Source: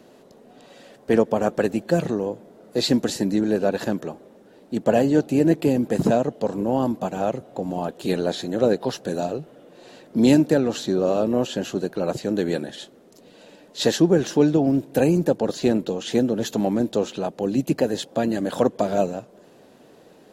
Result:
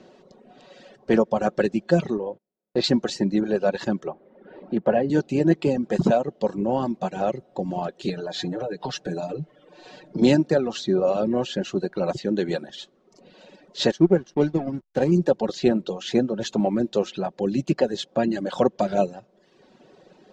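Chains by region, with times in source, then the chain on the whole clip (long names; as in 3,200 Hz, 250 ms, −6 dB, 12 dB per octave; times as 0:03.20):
0:02.17–0:02.84: low-pass filter 3,400 Hz + noise gate −39 dBFS, range −30 dB
0:04.07–0:05.10: low-pass filter 2,200 Hz + low-shelf EQ 220 Hz −4 dB + multiband upward and downward compressor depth 40%
0:08.09–0:10.22: comb filter 6.6 ms, depth 87% + downward compressor 10 to 1, threshold −23 dBFS
0:13.91–0:15.12: notch filter 2,600 Hz, Q 9.4 + slack as between gear wheels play −27.5 dBFS + expander for the loud parts, over −35 dBFS
whole clip: reverb reduction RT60 0.96 s; low-pass filter 6,300 Hz 24 dB per octave; comb filter 5.4 ms, depth 36%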